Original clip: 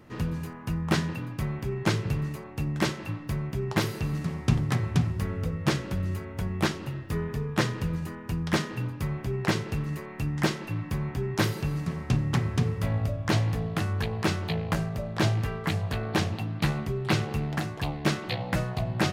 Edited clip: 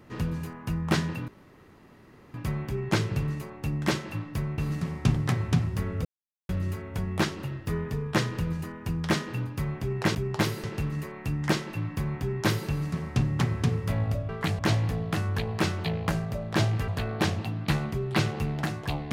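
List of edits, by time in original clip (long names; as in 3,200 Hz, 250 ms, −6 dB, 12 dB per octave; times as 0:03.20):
0:01.28: splice in room tone 1.06 s
0:03.52–0:04.01: move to 0:09.58
0:05.48–0:05.92: silence
0:15.52–0:15.82: move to 0:13.23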